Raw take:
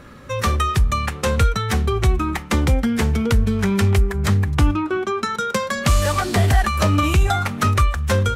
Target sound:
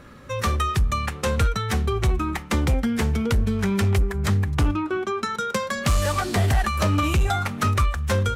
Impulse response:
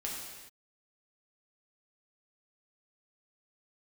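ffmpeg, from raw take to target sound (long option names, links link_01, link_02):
-af "volume=11dB,asoftclip=hard,volume=-11dB,volume=-3.5dB"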